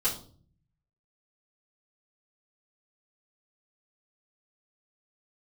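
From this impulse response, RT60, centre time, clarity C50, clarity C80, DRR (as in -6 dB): 0.45 s, 20 ms, 9.5 dB, 15.0 dB, -10.5 dB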